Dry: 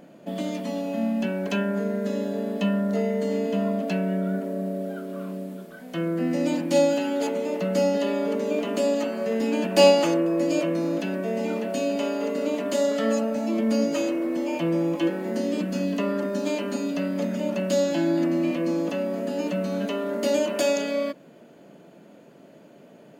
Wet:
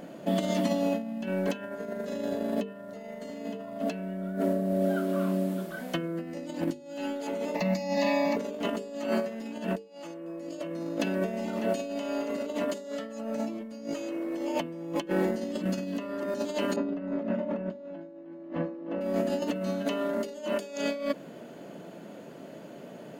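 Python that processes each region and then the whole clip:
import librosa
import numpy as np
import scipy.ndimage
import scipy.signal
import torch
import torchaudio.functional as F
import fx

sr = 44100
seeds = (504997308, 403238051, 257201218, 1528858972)

y = fx.chain(x, sr, fx.peak_eq(hz=3000.0, db=4.5, octaves=0.91),
    fx.fixed_phaser(hz=2100.0, stages=8), at=(7.55, 8.37))
y = fx.chain(y, sr, fx.lowpass(hz=1500.0, slope=12),
    fx.echo_split(split_hz=400.0, low_ms=140, high_ms=312, feedback_pct=52, wet_db=-4.5), at=(16.76, 19.01))
y = fx.notch(y, sr, hz=2400.0, q=29.0)
y = fx.over_compress(y, sr, threshold_db=-30.0, ratio=-0.5)
y = fx.hum_notches(y, sr, base_hz=50, count=9)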